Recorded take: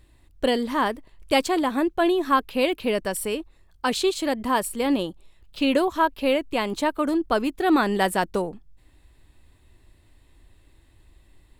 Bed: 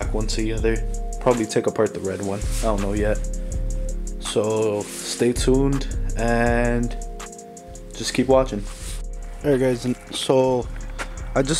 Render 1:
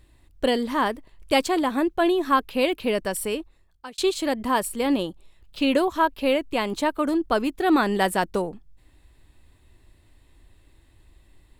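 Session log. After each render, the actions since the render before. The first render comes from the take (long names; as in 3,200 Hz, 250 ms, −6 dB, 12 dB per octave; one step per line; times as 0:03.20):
0:03.37–0:03.98: fade out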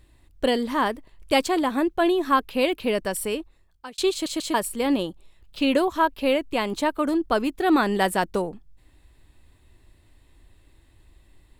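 0:04.12: stutter in place 0.14 s, 3 plays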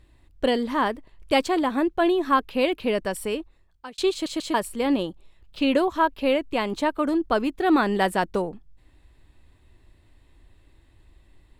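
high-shelf EQ 6,700 Hz −9 dB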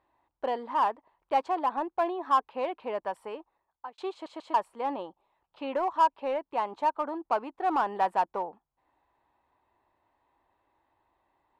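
resonant band-pass 890 Hz, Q 3.4
in parallel at −5.5 dB: hard clipping −29 dBFS, distortion −6 dB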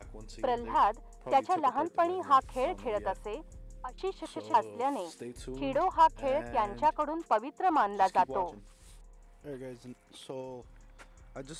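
mix in bed −23.5 dB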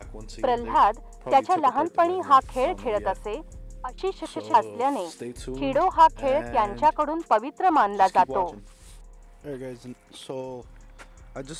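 level +7 dB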